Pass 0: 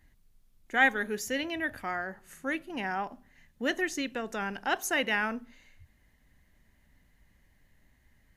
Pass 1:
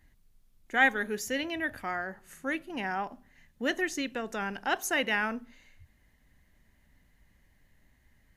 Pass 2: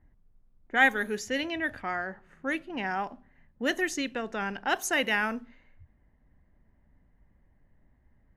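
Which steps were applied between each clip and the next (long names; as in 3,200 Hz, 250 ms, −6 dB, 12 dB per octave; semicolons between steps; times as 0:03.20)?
no processing that can be heard
low-pass that shuts in the quiet parts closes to 1,000 Hz, open at −26 dBFS; high-shelf EQ 10,000 Hz +8 dB; level +1.5 dB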